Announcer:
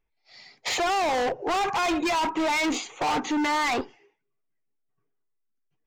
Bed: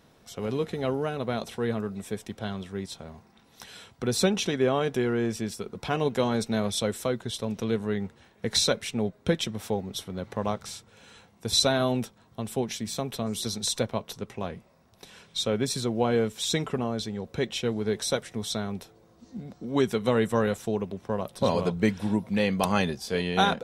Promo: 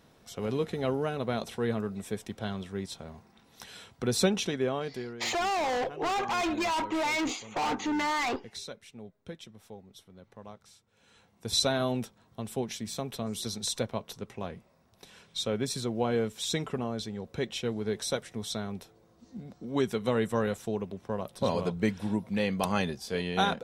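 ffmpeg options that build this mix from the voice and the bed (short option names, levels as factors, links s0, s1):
-filter_complex "[0:a]adelay=4550,volume=0.596[s0];[1:a]volume=4.22,afade=t=out:st=4.23:d=0.97:silence=0.149624,afade=t=in:st=10.86:d=0.68:silence=0.199526[s1];[s0][s1]amix=inputs=2:normalize=0"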